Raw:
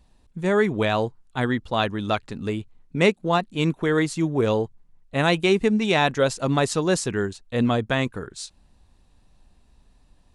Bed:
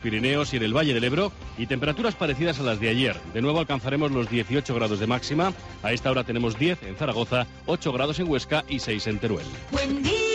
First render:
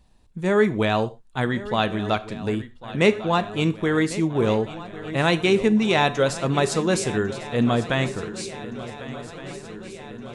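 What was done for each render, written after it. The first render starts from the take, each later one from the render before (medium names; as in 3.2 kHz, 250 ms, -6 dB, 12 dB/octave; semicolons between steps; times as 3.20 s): shuffle delay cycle 1467 ms, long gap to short 3:1, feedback 63%, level -16 dB; gated-style reverb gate 150 ms falling, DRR 11.5 dB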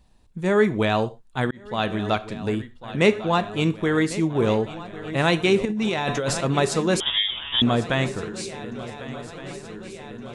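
1.51–1.91 s: fade in; 5.65–6.41 s: compressor with a negative ratio -24 dBFS; 7.00–7.62 s: frequency inversion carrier 3.6 kHz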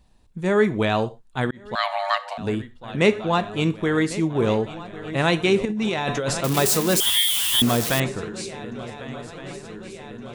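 1.75–2.38 s: frequency shift +490 Hz; 6.44–8.00 s: zero-crossing glitches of -14.5 dBFS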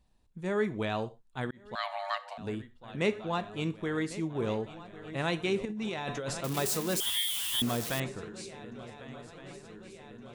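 trim -11 dB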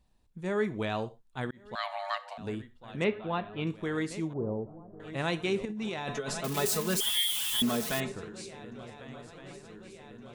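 3.04–3.67 s: low-pass 3.5 kHz 24 dB/octave; 4.33–5.00 s: Bessel low-pass 610 Hz, order 6; 6.14–8.12 s: comb 4.7 ms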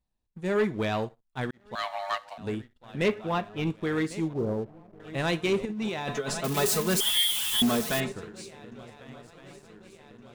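waveshaping leveller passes 2; upward expansion 1.5:1, over -38 dBFS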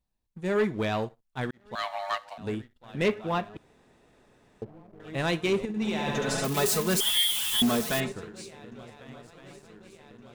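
3.57–4.62 s: room tone; 5.67–6.45 s: flutter echo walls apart 12 m, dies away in 1.4 s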